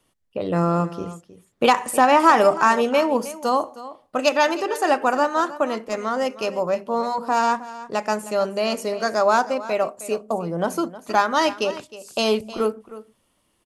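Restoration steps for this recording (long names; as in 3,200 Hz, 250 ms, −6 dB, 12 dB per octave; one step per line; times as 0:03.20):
clipped peaks rebuilt −5.5 dBFS
echo removal 313 ms −16 dB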